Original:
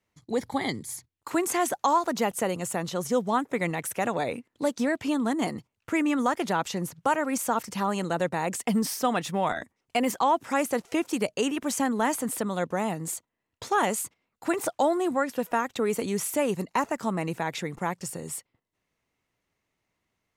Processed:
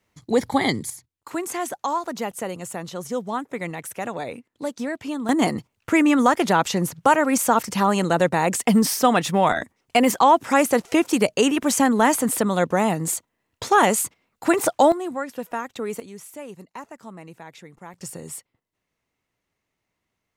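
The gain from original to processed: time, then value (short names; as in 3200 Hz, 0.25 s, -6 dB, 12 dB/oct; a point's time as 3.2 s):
+8 dB
from 0.9 s -2 dB
from 5.29 s +8 dB
from 14.92 s -2.5 dB
from 16 s -11.5 dB
from 17.94 s 0 dB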